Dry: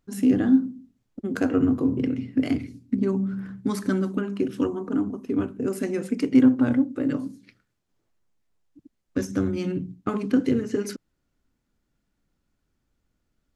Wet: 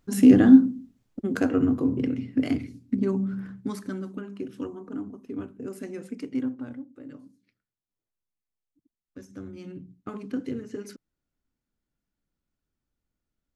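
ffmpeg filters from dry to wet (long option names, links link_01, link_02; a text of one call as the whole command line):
ffmpeg -i in.wav -af "volume=13.5dB,afade=type=out:start_time=0.61:duration=0.93:silence=0.446684,afade=type=out:start_time=3.39:duration=0.47:silence=0.398107,afade=type=out:start_time=6.08:duration=0.69:silence=0.375837,afade=type=in:start_time=9.22:duration=0.92:silence=0.398107" out.wav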